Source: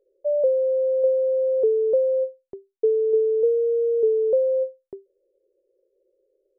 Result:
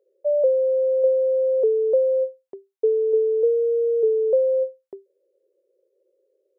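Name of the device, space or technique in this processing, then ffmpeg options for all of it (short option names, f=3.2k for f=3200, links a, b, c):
filter by subtraction: -filter_complex "[0:a]asplit=2[a][b];[b]lowpass=600,volume=-1[c];[a][c]amix=inputs=2:normalize=0"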